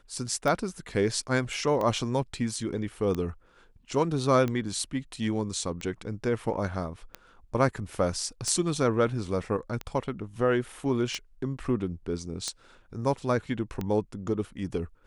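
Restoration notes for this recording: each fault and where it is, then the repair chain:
tick 45 rpm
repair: de-click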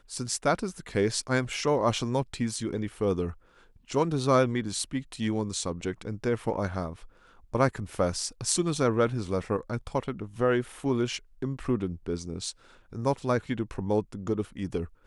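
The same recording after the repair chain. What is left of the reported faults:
none

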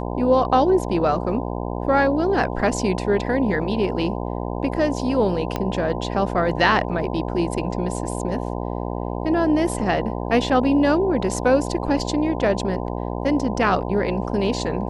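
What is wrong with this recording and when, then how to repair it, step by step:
buzz 60 Hz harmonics 17 -27 dBFS
5.56 pop -10 dBFS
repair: de-click; de-hum 60 Hz, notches 17

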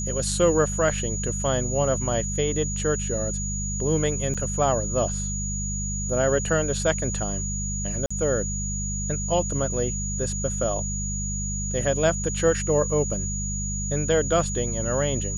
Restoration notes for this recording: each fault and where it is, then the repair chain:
hum 50 Hz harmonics 4 -30 dBFS
tone 6800 Hz -30 dBFS
4.34–4.35 gap 6.2 ms
8.06–8.11 gap 45 ms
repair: notch 6800 Hz, Q 30; de-hum 50 Hz, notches 4; interpolate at 4.34, 6.2 ms; interpolate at 8.06, 45 ms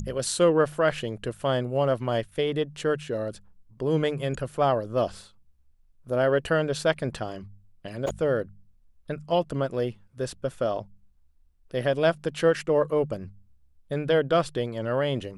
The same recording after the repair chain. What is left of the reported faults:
none

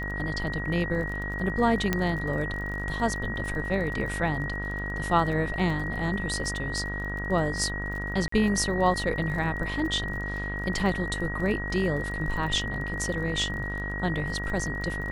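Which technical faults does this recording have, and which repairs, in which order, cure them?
buzz 50 Hz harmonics 35 -34 dBFS
crackle 31/s -35 dBFS
tone 1900 Hz -33 dBFS
1.93 pop -10 dBFS
8.28–8.32 gap 44 ms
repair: de-click; de-hum 50 Hz, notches 35; notch 1900 Hz, Q 30; interpolate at 8.28, 44 ms

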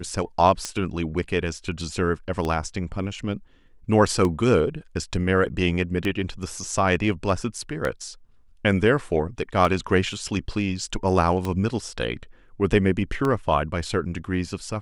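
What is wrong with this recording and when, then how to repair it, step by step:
tick 33 1/3 rpm -13 dBFS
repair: de-click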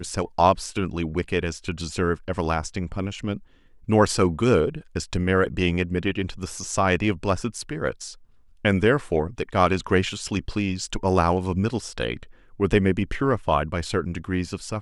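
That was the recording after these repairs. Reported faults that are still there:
none

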